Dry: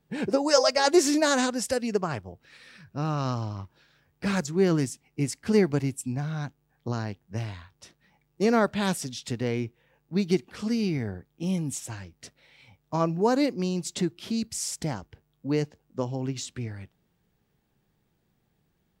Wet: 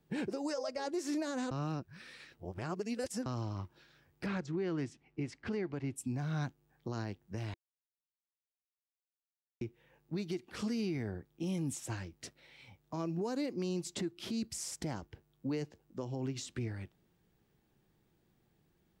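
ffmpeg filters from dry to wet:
ffmpeg -i in.wav -filter_complex "[0:a]asettb=1/sr,asplit=3[link_01][link_02][link_03];[link_01]atrim=end=4.264[link_04];[link_02]atrim=start=4.26:end=5.96,asetpts=PTS-STARTPTS,afade=type=in:duration=0.004:curve=qsin,afade=type=out:start_time=1.696:duration=0.004:curve=qsin,lowpass=3000[link_05];[link_03]atrim=start=5.956[link_06];[link_04][link_05]acrossfade=duration=0.004:curve1=hsin:curve2=qsin[link_07];[link_07][link_06]acrossfade=duration=0.004:curve1=qsin:curve2=hsin,asplit=5[link_08][link_09][link_10][link_11][link_12];[link_08]atrim=end=1.512[link_13];[link_09]atrim=start=1.508:end=3.262,asetpts=PTS-STARTPTS,areverse[link_14];[link_10]atrim=start=3.258:end=7.54,asetpts=PTS-STARTPTS,afade=type=out:start_time=4.278:duration=0.004:curve=hsin[link_15];[link_11]atrim=start=7.54:end=9.61,asetpts=PTS-STARTPTS,volume=0[link_16];[link_12]atrim=start=9.61,asetpts=PTS-STARTPTS,afade=type=in:duration=0.004:curve=hsin[link_17];[link_13][link_14]acrossfade=duration=0.004:curve1=hsin:curve2=hsin[link_18];[link_15][link_16][link_17]concat=n=3:v=0:a=1[link_19];[link_18][link_19]acrossfade=duration=0.004:curve1=hsin:curve2=hsin,equalizer=frequency=340:width_type=o:width=0.31:gain=6,acrossover=split=540|2000[link_20][link_21][link_22];[link_20]acompressor=threshold=-26dB:ratio=4[link_23];[link_21]acompressor=threshold=-34dB:ratio=4[link_24];[link_22]acompressor=threshold=-38dB:ratio=4[link_25];[link_23][link_24][link_25]amix=inputs=3:normalize=0,alimiter=level_in=2.5dB:limit=-24dB:level=0:latency=1:release=230,volume=-2.5dB,volume=-2dB" out.wav

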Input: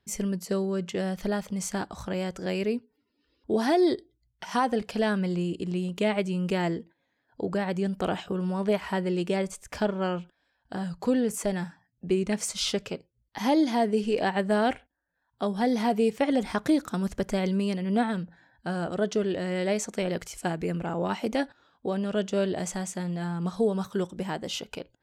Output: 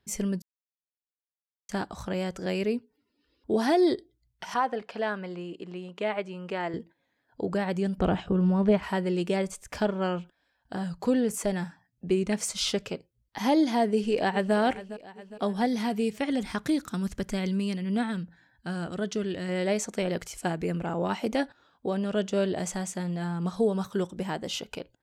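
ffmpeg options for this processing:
ffmpeg -i in.wav -filter_complex "[0:a]asettb=1/sr,asplit=3[link_01][link_02][link_03];[link_01]atrim=end=4.544[link_04];[link_02]atrim=start=4.54:end=6.74,asetpts=PTS-STARTPTS,afade=type=in:duration=0.004:curve=qsin,afade=type=out:start_time=2.196:duration=0.004:curve=qsin,bandpass=frequency=1100:width_type=q:width=0.64[link_05];[link_03]atrim=start=6.736[link_06];[link_04][link_05]acrossfade=duration=0.004:curve1=hsin:curve2=qsin[link_07];[link_07][link_06]acrossfade=duration=0.004:curve1=qsin:curve2=hsin,asettb=1/sr,asplit=3[link_08][link_09][link_10];[link_08]atrim=end=7.984[link_11];[link_09]atrim=start=7.98:end=8.83,asetpts=PTS-STARTPTS,afade=type=in:duration=0.004:curve=qsin,afade=type=out:start_time=0.846:duration=0.004:curve=qsin,aemphasis=mode=reproduction:type=bsi[link_12];[link_10]atrim=start=8.826[link_13];[link_11][link_12]acrossfade=duration=0.004:curve1=hsin:curve2=qsin[link_14];[link_14][link_13]acrossfade=duration=0.004:curve1=qsin:curve2=hsin,asplit=2[link_15][link_16];[link_16]afade=type=in:start_time=13.9:duration=0.01,afade=type=out:start_time=14.55:duration=0.01,aecho=0:1:410|820|1230|1640|2050:0.177828|0.0978054|0.053793|0.0295861|0.0162724[link_17];[link_15][link_17]amix=inputs=2:normalize=0,asettb=1/sr,asplit=3[link_18][link_19][link_20];[link_18]atrim=end=15.664[link_21];[link_19]atrim=start=15.66:end=19.49,asetpts=PTS-STARTPTS,afade=type=in:duration=0.004:curve=qsin,afade=type=out:start_time=3.826:duration=0.004:curve=qsin,equalizer=frequency=630:width_type=o:width=1.7:gain=-7.5[link_22];[link_20]atrim=start=19.486[link_23];[link_21][link_22]acrossfade=duration=0.004:curve1=hsin:curve2=qsin[link_24];[link_24][link_23]acrossfade=duration=0.004:curve1=qsin:curve2=hsin,asplit=3[link_25][link_26][link_27];[link_25]atrim=end=0.42,asetpts=PTS-STARTPTS,afade=type=out:start_time=0.416:duration=0.004:curve=hsin[link_28];[link_26]atrim=start=0.42:end=1.69,asetpts=PTS-STARTPTS,volume=0[link_29];[link_27]atrim=start=1.69,asetpts=PTS-STARTPTS,afade=type=in:duration=0.004:curve=hsin[link_30];[link_28][link_29][link_30]concat=n=3:v=0:a=1" out.wav

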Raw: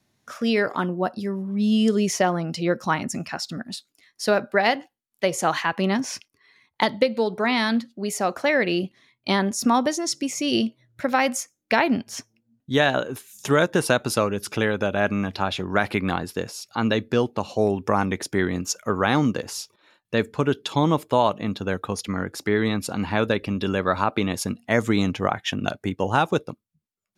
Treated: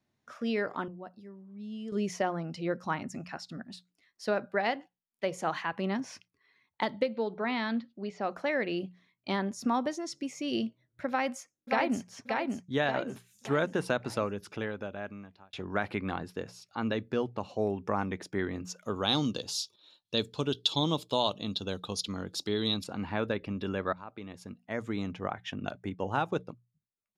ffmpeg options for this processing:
ffmpeg -i in.wav -filter_complex "[0:a]asettb=1/sr,asplit=3[link_01][link_02][link_03];[link_01]atrim=end=7.094[link_04];[link_02]atrim=start=7.09:end=8.31,asetpts=PTS-STARTPTS,afade=type=in:duration=0.004:curve=qsin,afade=type=out:start_time=1.216:duration=0.004:curve=qsin,lowpass=frequency=4800:width=0.5412,lowpass=frequency=4800:width=1.3066[link_05];[link_03]atrim=start=8.306[link_06];[link_04][link_05]acrossfade=duration=0.004:curve1=hsin:curve2=qsin[link_07];[link_07][link_06]acrossfade=duration=0.004:curve1=qsin:curve2=hsin,asplit=2[link_08][link_09];[link_09]afade=type=in:start_time=11.09:duration=0.01,afade=type=out:start_time=12.05:duration=0.01,aecho=0:1:580|1160|1740|2320|2900|3480:0.707946|0.318576|0.143359|0.0645116|0.0290302|0.0130636[link_10];[link_08][link_10]amix=inputs=2:normalize=0,asettb=1/sr,asplit=3[link_11][link_12][link_13];[link_11]atrim=end=18.824[link_14];[link_12]atrim=start=18.82:end=22.84,asetpts=PTS-STARTPTS,afade=type=in:duration=0.004:curve=qsin,afade=type=out:start_time=4.016:duration=0.004:curve=qsin,highshelf=frequency=2700:width_type=q:width=3:gain=11[link_15];[link_13]atrim=start=22.836[link_16];[link_14][link_15]acrossfade=duration=0.004:curve1=hsin:curve2=qsin[link_17];[link_17][link_16]acrossfade=duration=0.004:curve1=qsin:curve2=hsin,asplit=5[link_18][link_19][link_20][link_21][link_22];[link_18]atrim=end=0.882[link_23];[link_19]atrim=start=0.878:end=1.922,asetpts=PTS-STARTPTS,volume=-11.5dB[link_24];[link_20]atrim=start=1.918:end=15.53,asetpts=PTS-STARTPTS,afade=type=out:start_time=12.332:duration=1.28[link_25];[link_21]atrim=start=15.53:end=23.93,asetpts=PTS-STARTPTS,afade=type=in:duration=0.004:curve=hsin,afade=type=out:start_time=8.396:duration=0.004:curve=hsin:silence=0.141254[link_26];[link_22]atrim=start=23.93,asetpts=PTS-STARTPTS,afade=type=in:duration=2.51:curve=qsin:silence=0.141254[link_27];[link_23][link_24]acrossfade=duration=0.004:curve1=hsin:curve2=hsin[link_28];[link_25][link_26][link_27]concat=n=3:v=0:a=1[link_29];[link_28][link_29]acrossfade=duration=0.004:curve1=hsin:curve2=hsin,aemphasis=mode=reproduction:type=50kf,bandreject=frequency=60:width_type=h:width=6,bandreject=frequency=120:width_type=h:width=6,bandreject=frequency=180:width_type=h:width=6,volume=-9dB" out.wav

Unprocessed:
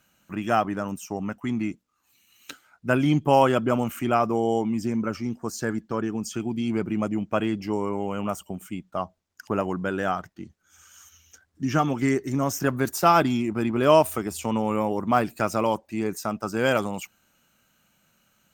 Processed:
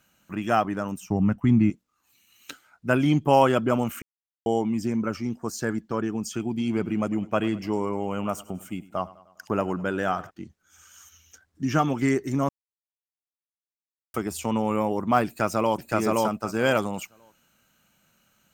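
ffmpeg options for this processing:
ffmpeg -i in.wav -filter_complex "[0:a]asettb=1/sr,asplit=3[link_01][link_02][link_03];[link_01]atrim=end=1.004[link_04];[link_02]atrim=start=1:end=1.7,asetpts=PTS-STARTPTS,afade=type=in:duration=0.004:curve=qsin,afade=type=out:start_time=0.696:duration=0.004:curve=qsin,bass=frequency=250:gain=14,treble=frequency=4000:gain=-6[link_05];[link_03]atrim=start=1.696[link_06];[link_04][link_05]acrossfade=duration=0.004:curve1=hsin:curve2=qsin[link_07];[link_07][link_06]acrossfade=duration=0.004:curve1=qsin:curve2=hsin,asplit=3[link_08][link_09][link_10];[link_08]afade=type=out:start_time=6.57:duration=0.02[link_11];[link_09]aecho=1:1:101|202|303|404:0.106|0.0572|0.0309|0.0167,afade=type=in:start_time=6.57:duration=0.02,afade=type=out:start_time=10.29:duration=0.02[link_12];[link_10]afade=type=in:start_time=10.29:duration=0.02[link_13];[link_11][link_12][link_13]amix=inputs=3:normalize=0,asplit=2[link_14][link_15];[link_15]afade=type=in:start_time=15.26:duration=0.01,afade=type=out:start_time=15.86:duration=0.01,aecho=0:1:520|1040|1560:0.944061|0.141609|0.0212414[link_16];[link_14][link_16]amix=inputs=2:normalize=0,asplit=5[link_17][link_18][link_19][link_20][link_21];[link_17]atrim=end=4.02,asetpts=PTS-STARTPTS,afade=type=out:start_time=4.016:duration=0.004:curve=hsin[link_22];[link_18]atrim=start=4.02:end=4.46,asetpts=PTS-STARTPTS,volume=0[link_23];[link_19]atrim=start=4.46:end=12.49,asetpts=PTS-STARTPTS,afade=type=in:duration=0.004:curve=hsin,afade=type=out:start_time=8.026:duration=0.004:curve=hsin[link_24];[link_20]atrim=start=12.49:end=14.14,asetpts=PTS-STARTPTS,volume=0[link_25];[link_21]atrim=start=14.14,asetpts=PTS-STARTPTS,afade=type=in:duration=0.004:curve=hsin[link_26];[link_22][link_23][link_24][link_25][link_26]concat=n=5:v=0:a=1" out.wav

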